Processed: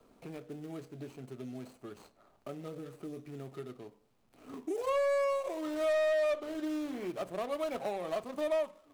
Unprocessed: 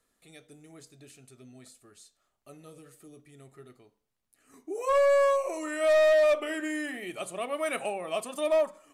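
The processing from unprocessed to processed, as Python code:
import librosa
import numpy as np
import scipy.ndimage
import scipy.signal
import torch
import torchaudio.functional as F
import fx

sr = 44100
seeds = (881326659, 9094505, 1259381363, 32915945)

y = scipy.ndimage.median_filter(x, 25, mode='constant')
y = fx.band_squash(y, sr, depth_pct=70)
y = y * librosa.db_to_amplitude(-3.0)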